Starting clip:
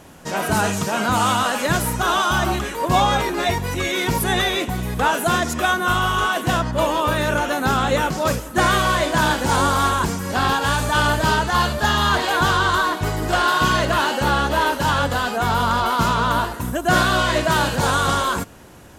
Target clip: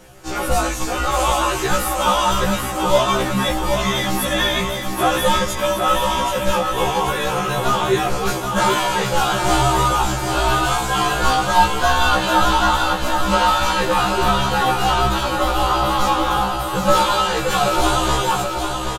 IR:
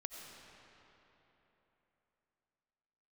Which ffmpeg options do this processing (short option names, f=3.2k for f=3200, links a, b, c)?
-af "bandreject=f=60:t=h:w=6,bandreject=f=120:t=h:w=6,bandreject=f=180:t=h:w=6,bandreject=f=240:t=h:w=6,bandreject=f=300:t=h:w=6,bandreject=f=360:t=h:w=6,aecho=1:1:779|1558|2337|3116|3895|4674|5453:0.501|0.281|0.157|0.088|0.0493|0.0276|0.0155,afreqshift=-150,aecho=1:1:5.6:0.56,afftfilt=real='re*1.73*eq(mod(b,3),0)':imag='im*1.73*eq(mod(b,3),0)':win_size=2048:overlap=0.75,volume=2dB"